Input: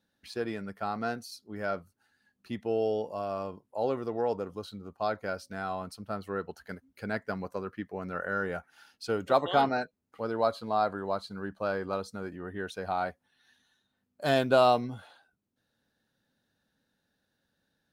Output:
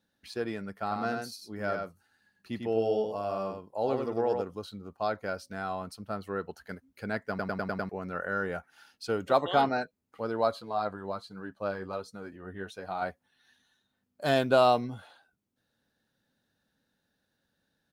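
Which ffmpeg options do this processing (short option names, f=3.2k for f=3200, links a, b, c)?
-filter_complex "[0:a]asplit=3[a][b][c];[a]afade=t=out:st=0.82:d=0.02[d];[b]aecho=1:1:98:0.596,afade=t=in:st=0.82:d=0.02,afade=t=out:st=4.41:d=0.02[e];[c]afade=t=in:st=4.41:d=0.02[f];[d][e][f]amix=inputs=3:normalize=0,asettb=1/sr,asplit=3[g][h][i];[g]atrim=end=10.624[j];[h]atrim=start=10.62:end=13.02,asetpts=PTS-STARTPTS,afade=t=in:d=0.004:c=qsin,afade=t=out:st=2.396:d=0.004:c=qsin,flanger=delay=5.7:depth=5.8:regen=37:speed=1.3:shape=triangular[k];[i]atrim=start=13.016[l];[j][k]acrossfade=d=0.004:c1=hsin:c2=qsin[m];[m][l]acrossfade=d=0.004:c1=qsin:c2=hsin,asplit=7[n][o][p][q][r][s][t];[n]atrim=end=7.392[u];[o]atrim=start=7.288:end=7.392[v];[p]atrim=start=7.288:end=7.392[w];[q]atrim=start=7.288:end=7.392[x];[r]atrim=start=7.288:end=7.392[y];[s]atrim=start=7.288:end=7.392[z];[t]atrim=start=7.888[aa];[u][v]acrossfade=d=0.004:c1=hsin:c2=hsin[ab];[ab][w]acrossfade=d=0.004:c1=hsin:c2=hsin[ac];[ac][x]acrossfade=d=0.004:c1=hsin:c2=hsin[ad];[ad][y]acrossfade=d=0.004:c1=hsin:c2=hsin[ae];[ae][z]acrossfade=d=0.004:c1=hsin:c2=hsin[af];[af][aa]acrossfade=d=0.004:c1=hsin:c2=hsin"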